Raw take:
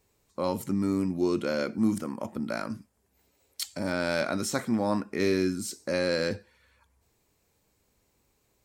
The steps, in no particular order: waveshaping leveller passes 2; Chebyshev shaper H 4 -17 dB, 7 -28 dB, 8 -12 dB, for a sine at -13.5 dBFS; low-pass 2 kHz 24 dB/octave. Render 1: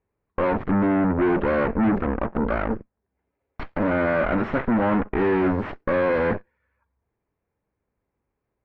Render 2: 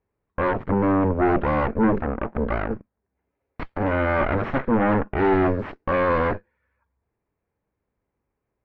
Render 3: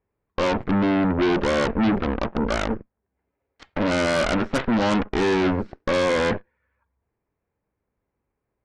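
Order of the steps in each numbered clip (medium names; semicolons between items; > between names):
waveshaping leveller > Chebyshev shaper > low-pass; Chebyshev shaper > waveshaping leveller > low-pass; waveshaping leveller > low-pass > Chebyshev shaper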